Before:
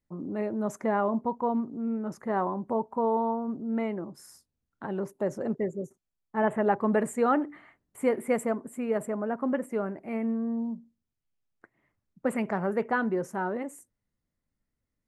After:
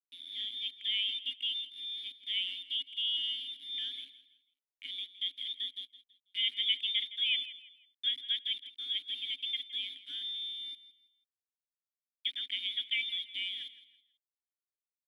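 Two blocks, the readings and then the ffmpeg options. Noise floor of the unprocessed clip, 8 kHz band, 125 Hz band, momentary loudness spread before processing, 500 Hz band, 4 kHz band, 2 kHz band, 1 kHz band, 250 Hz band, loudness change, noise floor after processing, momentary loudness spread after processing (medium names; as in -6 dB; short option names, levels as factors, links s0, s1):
-84 dBFS, under -15 dB, under -40 dB, 10 LU, under -40 dB, no reading, -3.5 dB, under -40 dB, under -35 dB, -4.0 dB, under -85 dBFS, 11 LU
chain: -filter_complex "[0:a]highpass=89,lowpass=f=3200:t=q:w=0.5098,lowpass=f=3200:t=q:w=0.6013,lowpass=f=3200:t=q:w=0.9,lowpass=f=3200:t=q:w=2.563,afreqshift=-3800,aeval=exprs='val(0)*gte(abs(val(0)),0.0178)':c=same,asplit=3[s0][s1][s2];[s0]bandpass=f=270:t=q:w=8,volume=1[s3];[s1]bandpass=f=2290:t=q:w=8,volume=0.501[s4];[s2]bandpass=f=3010:t=q:w=8,volume=0.355[s5];[s3][s4][s5]amix=inputs=3:normalize=0,asplit=2[s6][s7];[s7]aecho=0:1:164|328|492:0.168|0.0571|0.0194[s8];[s6][s8]amix=inputs=2:normalize=0,volume=1.58"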